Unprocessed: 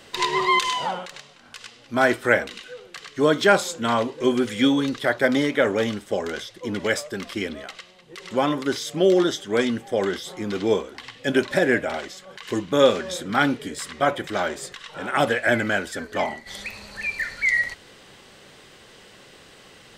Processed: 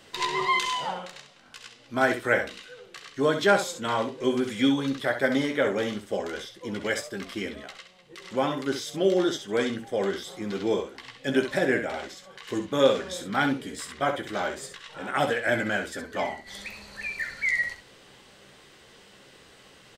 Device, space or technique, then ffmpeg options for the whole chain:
slapback doubling: -filter_complex "[0:a]asplit=3[a][b][c];[b]adelay=15,volume=-8dB[d];[c]adelay=66,volume=-8.5dB[e];[a][d][e]amix=inputs=3:normalize=0,volume=-5.5dB"

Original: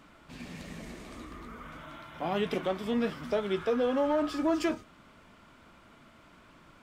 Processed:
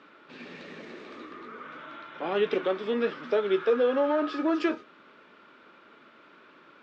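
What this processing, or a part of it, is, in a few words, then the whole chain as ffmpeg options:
phone earpiece: -af "highpass=400,equalizer=f=400:t=q:w=4:g=4,equalizer=f=700:t=q:w=4:g=-10,equalizer=f=1k:t=q:w=4:g=-6,equalizer=f=2.1k:t=q:w=4:g=-5,equalizer=f=3.1k:t=q:w=4:g=-5,lowpass=f=4.2k:w=0.5412,lowpass=f=4.2k:w=1.3066,equalizer=f=4.6k:w=2.8:g=-4,volume=7dB"

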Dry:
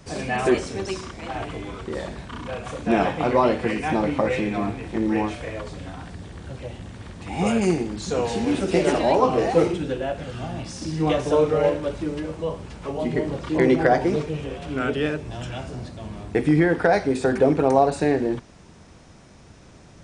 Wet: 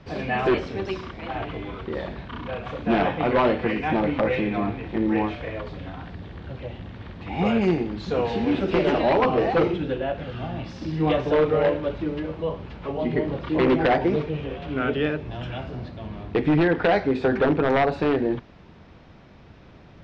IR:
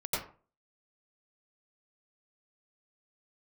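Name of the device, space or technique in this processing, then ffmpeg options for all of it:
synthesiser wavefolder: -af "aeval=exprs='0.224*(abs(mod(val(0)/0.224+3,4)-2)-1)':c=same,lowpass=f=3.9k:w=0.5412,lowpass=f=3.9k:w=1.3066"

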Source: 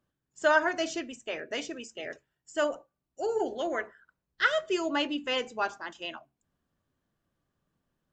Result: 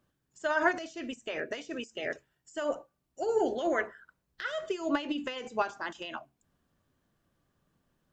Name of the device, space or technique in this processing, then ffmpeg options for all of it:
de-esser from a sidechain: -filter_complex "[0:a]asplit=2[a][b];[b]highpass=f=4.5k:w=0.5412,highpass=f=4.5k:w=1.3066,apad=whole_len=358375[c];[a][c]sidechaincompress=threshold=-56dB:ratio=8:attack=1.8:release=66,volume=5dB"

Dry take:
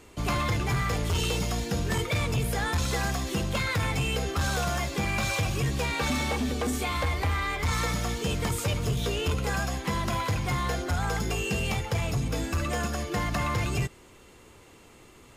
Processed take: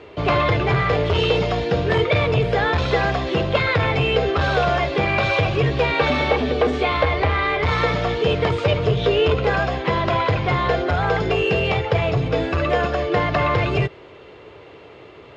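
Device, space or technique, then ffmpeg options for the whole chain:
guitar cabinet: -af "highpass=87,equalizer=f=220:t=q:w=4:g=-10,equalizer=f=430:t=q:w=4:g=7,equalizer=f=620:t=q:w=4:g=7,lowpass=f=3.8k:w=0.5412,lowpass=f=3.8k:w=1.3066,volume=9dB"

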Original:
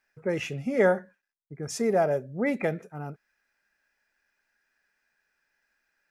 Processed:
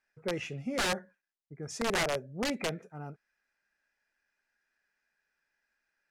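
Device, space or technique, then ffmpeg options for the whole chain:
overflowing digital effects unit: -af "aeval=exprs='(mod(8.41*val(0)+1,2)-1)/8.41':c=same,lowpass=9k,volume=-5.5dB"

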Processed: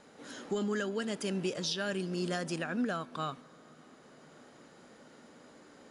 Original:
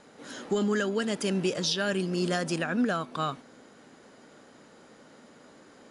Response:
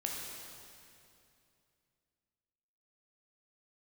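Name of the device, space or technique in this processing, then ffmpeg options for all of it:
ducked reverb: -filter_complex "[0:a]asplit=3[a][b][c];[1:a]atrim=start_sample=2205[d];[b][d]afir=irnorm=-1:irlink=0[e];[c]apad=whole_len=260274[f];[e][f]sidechaincompress=threshold=-43dB:ratio=8:attack=16:release=887,volume=-5dB[g];[a][g]amix=inputs=2:normalize=0,volume=-6.5dB"

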